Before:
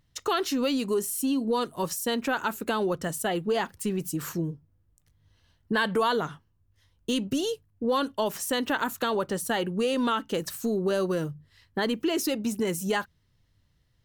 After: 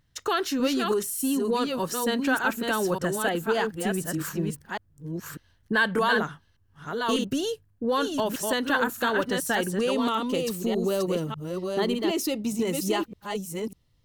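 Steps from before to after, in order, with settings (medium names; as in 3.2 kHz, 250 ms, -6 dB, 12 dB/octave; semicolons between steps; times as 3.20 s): chunks repeated in reverse 597 ms, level -4 dB; peaking EQ 1.6 kHz +6 dB 0.28 oct, from 9.91 s -10.5 dB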